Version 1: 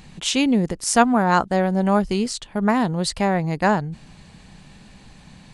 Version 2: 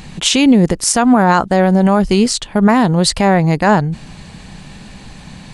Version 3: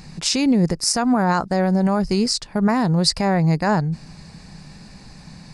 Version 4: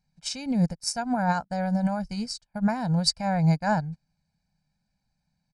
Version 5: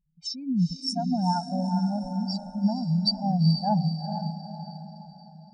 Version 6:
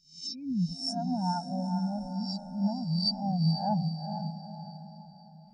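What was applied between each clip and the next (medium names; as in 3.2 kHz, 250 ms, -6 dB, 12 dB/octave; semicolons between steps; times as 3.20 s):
loudness maximiser +12 dB; trim -1 dB
graphic EQ with 31 bands 160 Hz +5 dB, 3.15 kHz -11 dB, 5 kHz +11 dB; trim -8 dB
comb 1.3 ms, depth 93%; upward expansion 2.5:1, over -34 dBFS; trim -5.5 dB
spectral contrast enhancement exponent 3.4; echo that smears into a reverb 451 ms, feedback 46%, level -7 dB
reverse spectral sustain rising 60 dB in 0.46 s; trim -5.5 dB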